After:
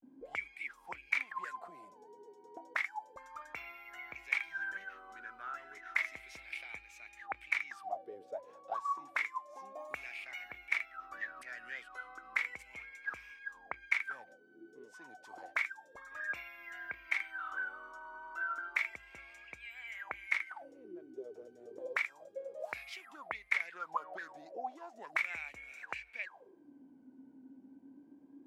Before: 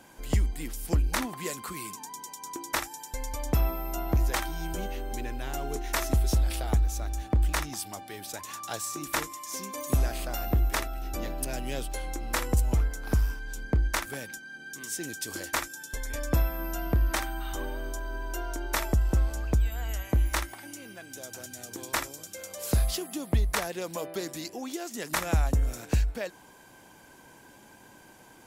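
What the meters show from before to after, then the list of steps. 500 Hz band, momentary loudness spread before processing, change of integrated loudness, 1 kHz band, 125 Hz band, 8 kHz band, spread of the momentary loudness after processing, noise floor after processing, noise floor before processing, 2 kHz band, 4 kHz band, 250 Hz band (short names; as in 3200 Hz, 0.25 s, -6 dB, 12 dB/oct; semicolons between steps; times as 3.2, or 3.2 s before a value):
-12.5 dB, 12 LU, -8.5 dB, -7.0 dB, under -40 dB, -26.0 dB, 19 LU, -61 dBFS, -53 dBFS, +0.5 dB, -14.5 dB, -22.0 dB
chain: auto-wah 230–2200 Hz, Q 19, up, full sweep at -27.5 dBFS; vibrato 0.32 Hz 77 cents; gain +12.5 dB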